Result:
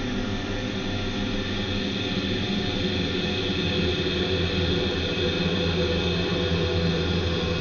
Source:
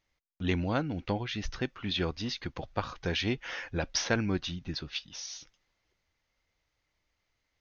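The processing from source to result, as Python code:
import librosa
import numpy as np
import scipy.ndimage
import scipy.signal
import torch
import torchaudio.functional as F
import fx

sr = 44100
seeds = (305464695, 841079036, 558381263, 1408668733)

y = fx.rev_schroeder(x, sr, rt60_s=4.0, comb_ms=32, drr_db=2.5)
y = fx.hpss(y, sr, part='harmonic', gain_db=9)
y = fx.paulstretch(y, sr, seeds[0], factor=22.0, window_s=0.5, from_s=1.78)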